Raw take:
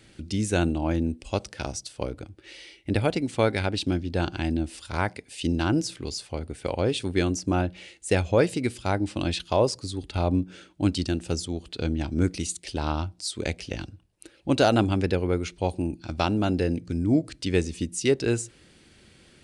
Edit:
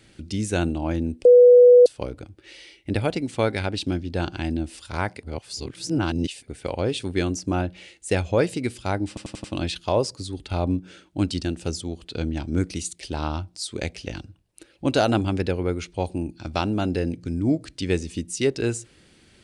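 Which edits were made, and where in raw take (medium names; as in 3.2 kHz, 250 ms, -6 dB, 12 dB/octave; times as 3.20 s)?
1.25–1.86 s: bleep 491 Hz -7.5 dBFS
5.23–6.48 s: reverse
9.08 s: stutter 0.09 s, 5 plays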